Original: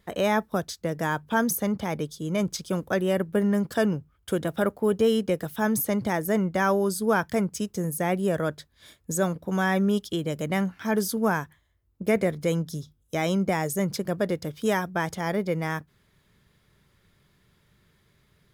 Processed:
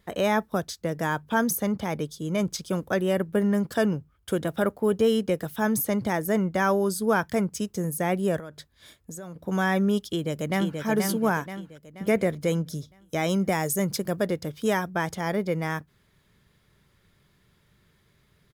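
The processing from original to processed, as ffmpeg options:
-filter_complex "[0:a]asettb=1/sr,asplit=3[a][b][c];[a]atrim=end=8.384[d];[b]atrim=start=8.38:end=9.39,asetpts=PTS-STARTPTS,afade=t=in:d=0.004:c=qsin,afade=t=out:st=1.006:d=0.004:c=qsin,acompressor=threshold=-35dB:ratio=16:attack=3.2:release=140:knee=1:detection=peak[e];[c]atrim=start=9.386[f];[d][e]acrossfade=d=0.004:c1=hsin:c2=qsin[g];[g][f]acrossfade=d=0.004:c1=qsin:c2=hsin,asplit=2[h][i];[i]afade=t=in:st=10.03:d=0.01,afade=t=out:st=10.81:d=0.01,aecho=0:1:480|960|1440|1920|2400|2880:0.595662|0.268048|0.120622|0.0542797|0.0244259|0.0109916[j];[h][j]amix=inputs=2:normalize=0,asettb=1/sr,asplit=3[k][l][m];[k]atrim=end=13.294[n];[l]atrim=start=13.29:end=14.26,asetpts=PTS-STARTPTS,afade=t=in:d=0.004:c=qsin,afade=t=out:st=0.966:d=0.004:c=qsin,highshelf=f=6.1k:g=6.5[o];[m]atrim=start=14.256[p];[n][o]acrossfade=d=0.004:c1=hsin:c2=qsin[q];[q][p]acrossfade=d=0.004:c1=qsin:c2=hsin"

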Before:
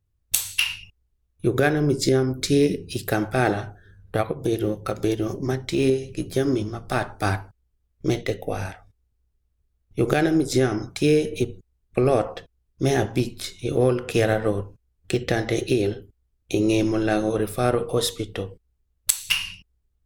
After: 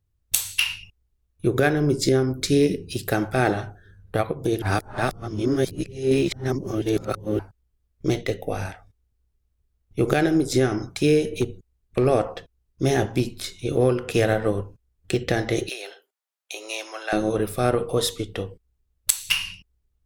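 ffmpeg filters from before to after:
-filter_complex "[0:a]asettb=1/sr,asplit=3[a][b][c];[a]atrim=end=11.374[d];[b]atrim=start=11.37:end=12.06,asetpts=PTS-STARTPTS,afade=t=in:d=0.004:c=qsin,afade=t=out:st=0.686:d=0.004:c=qsin,asoftclip=type=hard:threshold=-13dB[e];[c]atrim=start=12.056[f];[d][e]acrossfade=d=0.004:c1=hsin:c2=qsin[g];[g][f]acrossfade=d=0.004:c1=qsin:c2=hsin,asettb=1/sr,asplit=3[h][i][j];[h]atrim=end=15.694[k];[i]atrim=start=15.69:end=17.13,asetpts=PTS-STARTPTS,afade=t=in:d=0.004:c=qsin,afade=t=out:st=1.436:d=0.004:c=qsin,highpass=f=690:w=0.5412,highpass=f=690:w=1.3066[l];[j]atrim=start=17.126[m];[k][l]acrossfade=d=0.004:c1=hsin:c2=qsin[n];[n][m]acrossfade=d=0.004:c1=qsin:c2=hsin,asplit=3[o][p][q];[o]atrim=end=4.622[r];[p]atrim=start=4.618:end=7.392,asetpts=PTS-STARTPTS,areverse[s];[q]atrim=start=7.388[t];[r][s]acrossfade=d=0.004:c1=hsin:c2=hsin[u];[u][t]acrossfade=d=0.004:c1=hsin:c2=hsin"

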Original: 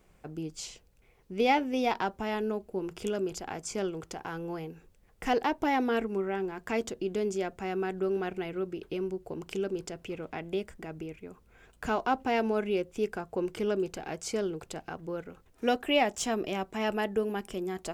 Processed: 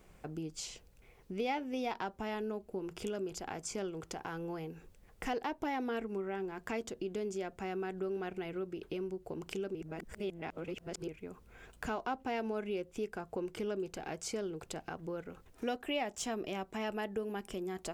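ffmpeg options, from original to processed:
-filter_complex "[0:a]asplit=3[a][b][c];[a]atrim=end=9.752[d];[b]atrim=start=9.748:end=11.082,asetpts=PTS-STARTPTS,areverse[e];[c]atrim=start=11.078[f];[d][e]acrossfade=d=0.004:c1=hsin:c2=hsin[g];[g][f]acrossfade=d=0.004:c1=hsin:c2=hsin,acompressor=threshold=-45dB:ratio=2,volume=2.5dB"

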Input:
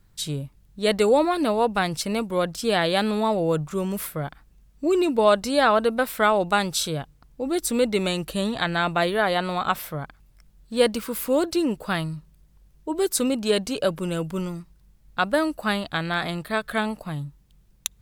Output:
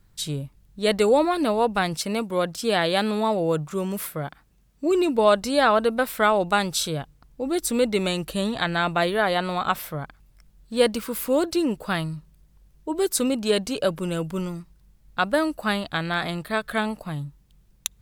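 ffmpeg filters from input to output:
-filter_complex "[0:a]asettb=1/sr,asplit=3[a][b][c];[a]atrim=end=1.944[d];[b]atrim=start=1.94:end=4.91,asetpts=PTS-STARTPTS,afade=t=in:d=0.004:c=qsin,afade=t=out:st=2.966:d=0.004:c=qsin,highpass=f=100:p=1[e];[c]atrim=start=4.906[f];[d][e]acrossfade=d=0.004:c1=hsin:c2=qsin[g];[g][f]acrossfade=d=0.004:c1=qsin:c2=hsin"

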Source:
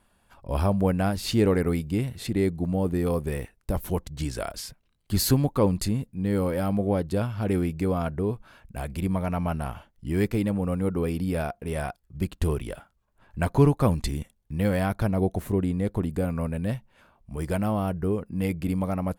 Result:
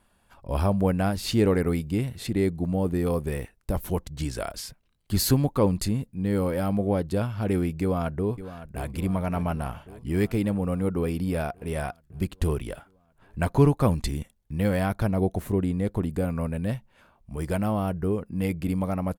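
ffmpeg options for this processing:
-filter_complex "[0:a]asplit=2[a][b];[b]afade=t=in:st=7.81:d=0.01,afade=t=out:st=8.92:d=0.01,aecho=0:1:560|1120|1680|2240|2800|3360|3920|4480|5040:0.211349|0.147944|0.103561|0.0724927|0.0507449|0.0355214|0.024865|0.0174055|0.0121838[c];[a][c]amix=inputs=2:normalize=0"

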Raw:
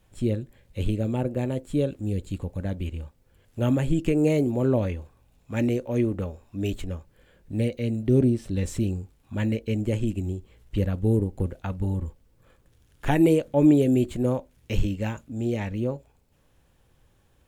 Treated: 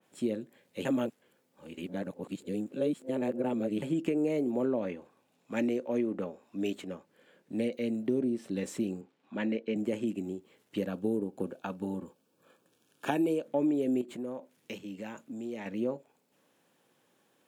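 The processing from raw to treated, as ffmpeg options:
-filter_complex "[0:a]asettb=1/sr,asplit=3[a][b][c];[a]atrim=end=4.654[d];[b]atrim=start=4.65:end=7.73,asetpts=PTS-STARTPTS,afade=t=in:d=0.004:c=qsin,afade=t=out:st=3.076:d=0.004:c=qsin,highshelf=f=9.3k:g=-7[e];[c]atrim=start=7.726[f];[d][e]acrossfade=d=0.004:c1=hsin:c2=qsin[g];[g][f]acrossfade=d=0.004:c1=qsin:c2=hsin,asettb=1/sr,asplit=3[h][i][j];[h]atrim=end=9.014[k];[i]atrim=start=9.01:end=9.76,asetpts=PTS-STARTPTS,afade=t=in:d=0.004:c=qsin,afade=t=out:st=0.746:d=0.004:c=qsin,highpass=150,lowpass=3.7k[l];[j]atrim=start=9.756[m];[k][l]acrossfade=d=0.004:c1=hsin:c2=qsin[n];[n][m]acrossfade=d=0.004:c1=qsin:c2=hsin,asettb=1/sr,asplit=3[o][p][q];[o]atrim=end=10.874[r];[p]atrim=start=10.87:end=13.46,asetpts=PTS-STARTPTS,afade=t=in:d=0.004:c=qsin,afade=t=out:st=2.586:d=0.004:c=qsin,asuperstop=centerf=2000:order=4:qfactor=4.9[s];[q]atrim=start=13.456[t];[r][s]acrossfade=d=0.004:c1=hsin:c2=qsin[u];[u][t]acrossfade=d=0.004:c1=qsin:c2=hsin,asettb=1/sr,asplit=3[v][w][x];[v]atrim=end=14.014[y];[w]atrim=start=14.01:end=15.66,asetpts=PTS-STARTPTS,afade=t=in:d=0.004:c=qsin,afade=t=out:st=1.646:d=0.004:c=qsin,acompressor=threshold=-32dB:ratio=4:attack=3.2:release=140:knee=1:detection=peak[z];[x]atrim=start=15.656[aa];[y][z]acrossfade=d=0.004:c1=hsin:c2=qsin[ab];[ab][aa]acrossfade=d=0.004:c1=qsin:c2=hsin,asplit=3[ac][ad][ae];[ac]atrim=end=0.852[af];[ad]atrim=start=0.848:end=3.822,asetpts=PTS-STARTPTS,areverse[ag];[ae]atrim=start=3.818[ah];[af][ag]acrossfade=d=0.004:c1=hsin:c2=hsin[ai];[ai][ah]acrossfade=d=0.004:c1=hsin:c2=hsin,highpass=f=200:w=0.5412,highpass=f=200:w=1.3066,acompressor=threshold=-24dB:ratio=6,adynamicequalizer=threshold=0.00224:dfrequency=2700:dqfactor=0.7:tfrequency=2700:tqfactor=0.7:attack=5:release=100:ratio=0.375:range=3:mode=cutabove:tftype=highshelf,volume=-1.5dB"

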